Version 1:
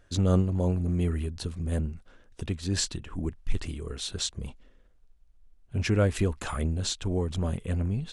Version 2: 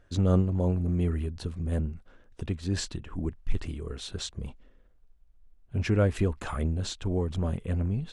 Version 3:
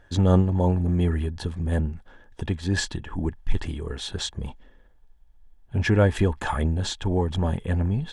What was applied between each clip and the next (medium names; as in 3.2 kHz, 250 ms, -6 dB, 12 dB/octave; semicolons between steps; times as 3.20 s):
treble shelf 3.3 kHz -8.5 dB
small resonant body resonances 870/1700/3300 Hz, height 11 dB, ringing for 25 ms; trim +4.5 dB